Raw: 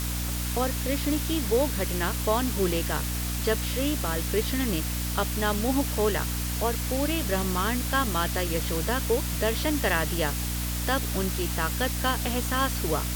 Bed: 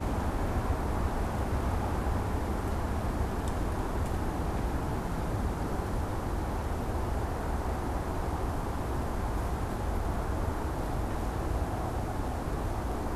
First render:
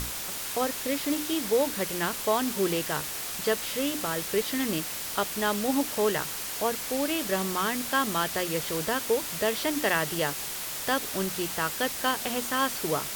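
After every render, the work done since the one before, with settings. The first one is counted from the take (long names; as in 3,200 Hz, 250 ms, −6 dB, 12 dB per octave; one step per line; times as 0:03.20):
mains-hum notches 60/120/180/240/300 Hz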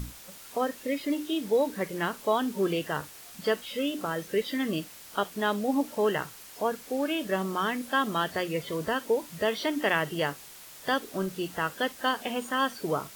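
noise reduction from a noise print 13 dB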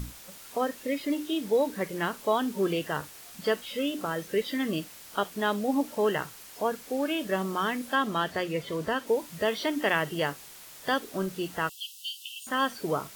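0:07.95–0:09.07: high-shelf EQ 7,800 Hz −6.5 dB
0:11.69–0:12.47: linear-phase brick-wall high-pass 2,600 Hz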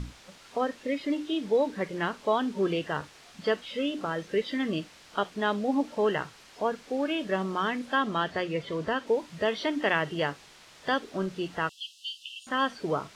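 low-pass filter 5,000 Hz 12 dB per octave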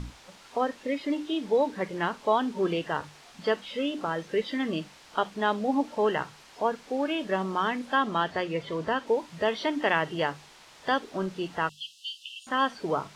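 parametric band 890 Hz +4.5 dB 0.55 octaves
mains-hum notches 50/100/150/200 Hz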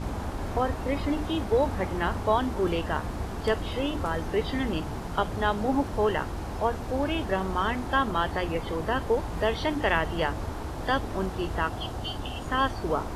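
mix in bed −2 dB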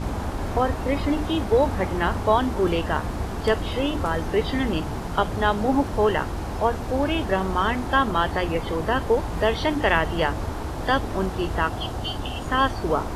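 level +4.5 dB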